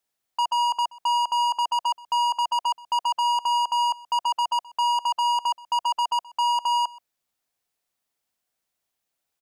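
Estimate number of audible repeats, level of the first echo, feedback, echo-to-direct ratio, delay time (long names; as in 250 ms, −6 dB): 1, −22.0 dB, repeats not evenly spaced, −22.0 dB, 127 ms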